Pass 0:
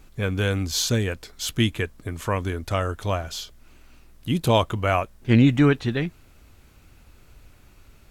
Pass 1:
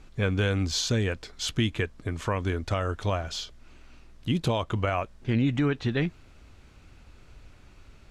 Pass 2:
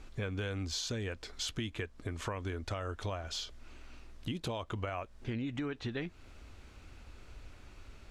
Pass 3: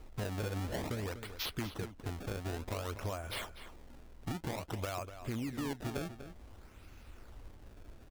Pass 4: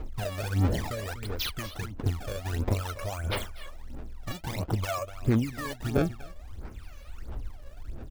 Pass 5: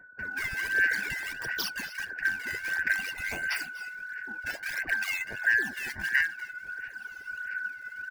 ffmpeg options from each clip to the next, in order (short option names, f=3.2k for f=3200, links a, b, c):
-af "alimiter=limit=-16dB:level=0:latency=1:release=165,lowpass=6.4k"
-af "equalizer=f=150:t=o:w=0.66:g=-7,acompressor=threshold=-36dB:ratio=4"
-filter_complex "[0:a]acrusher=samples=25:mix=1:aa=0.000001:lfo=1:lforange=40:lforate=0.54,asplit=2[a][b];[b]adelay=244.9,volume=-11dB,highshelf=f=4k:g=-5.51[c];[a][c]amix=inputs=2:normalize=0,volume=-1dB"
-af "aphaser=in_gain=1:out_gain=1:delay=1.8:decay=0.79:speed=1.5:type=sinusoidal,volume=2dB"
-filter_complex "[0:a]afftfilt=real='real(if(lt(b,272),68*(eq(floor(b/68),0)*1+eq(floor(b/68),1)*0+eq(floor(b/68),2)*3+eq(floor(b/68),3)*2)+mod(b,68),b),0)':imag='imag(if(lt(b,272),68*(eq(floor(b/68),0)*1+eq(floor(b/68),1)*0+eq(floor(b/68),2)*3+eq(floor(b/68),3)*2)+mod(b,68),b),0)':win_size=2048:overlap=0.75,acrossover=split=930[a][b];[b]adelay=190[c];[a][c]amix=inputs=2:normalize=0"